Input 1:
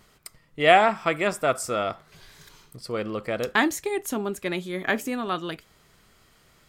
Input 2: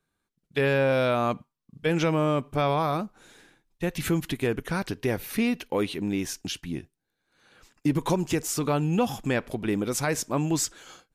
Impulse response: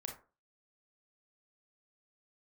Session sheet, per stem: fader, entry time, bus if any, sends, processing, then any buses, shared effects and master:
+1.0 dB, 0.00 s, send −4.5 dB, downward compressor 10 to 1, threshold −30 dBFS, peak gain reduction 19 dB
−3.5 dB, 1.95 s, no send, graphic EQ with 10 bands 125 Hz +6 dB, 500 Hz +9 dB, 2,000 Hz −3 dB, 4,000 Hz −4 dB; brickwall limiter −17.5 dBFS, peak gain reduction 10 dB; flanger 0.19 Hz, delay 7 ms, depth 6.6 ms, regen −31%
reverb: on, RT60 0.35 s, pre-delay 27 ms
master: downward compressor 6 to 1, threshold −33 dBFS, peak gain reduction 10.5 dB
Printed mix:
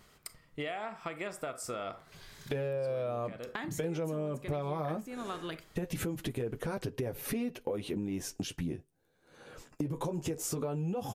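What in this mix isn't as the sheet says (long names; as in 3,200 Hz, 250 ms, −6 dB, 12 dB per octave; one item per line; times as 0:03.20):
stem 1 +1.0 dB → −5.5 dB
stem 2 −3.5 dB → +8.0 dB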